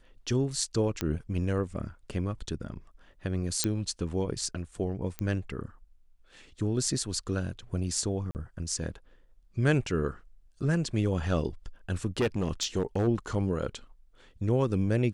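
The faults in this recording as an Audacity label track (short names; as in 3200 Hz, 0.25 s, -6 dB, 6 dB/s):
1.010000	1.010000	pop -14 dBFS
3.640000	3.640000	pop -9 dBFS
5.190000	5.190000	pop -18 dBFS
8.310000	8.350000	gap 39 ms
12.200000	13.080000	clipped -22 dBFS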